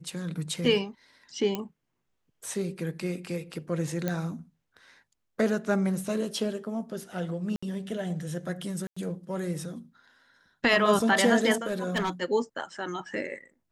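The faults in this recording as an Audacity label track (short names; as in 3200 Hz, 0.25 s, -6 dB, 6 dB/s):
1.550000	1.550000	pop -16 dBFS
4.080000	4.080000	pop -15 dBFS
7.560000	7.620000	gap 65 ms
8.870000	8.960000	gap 95 ms
11.660000	12.100000	clipped -23.5 dBFS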